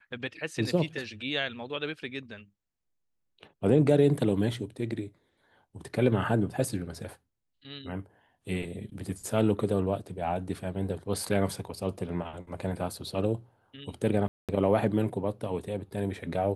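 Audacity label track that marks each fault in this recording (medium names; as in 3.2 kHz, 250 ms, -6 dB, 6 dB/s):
14.280000	14.490000	dropout 207 ms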